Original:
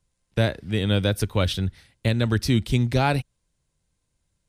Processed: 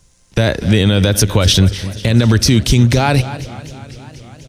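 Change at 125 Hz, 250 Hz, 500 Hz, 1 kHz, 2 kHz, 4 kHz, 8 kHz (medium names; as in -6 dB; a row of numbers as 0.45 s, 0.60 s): +10.5 dB, +10.5 dB, +8.5 dB, +7.5 dB, +9.0 dB, +13.0 dB, +19.0 dB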